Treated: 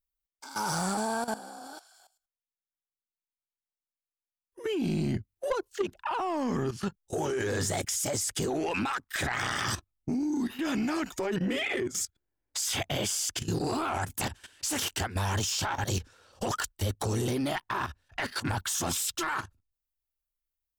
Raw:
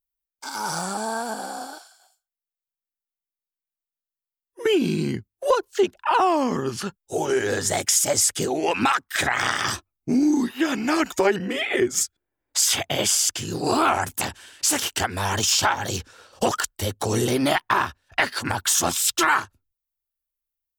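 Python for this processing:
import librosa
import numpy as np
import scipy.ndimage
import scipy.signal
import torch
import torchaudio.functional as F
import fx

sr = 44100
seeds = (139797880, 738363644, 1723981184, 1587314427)

y = fx.level_steps(x, sr, step_db=15)
y = fx.low_shelf(y, sr, hz=160.0, db=9.5)
y = 10.0 ** (-21.5 / 20.0) * np.tanh(y / 10.0 ** (-21.5 / 20.0))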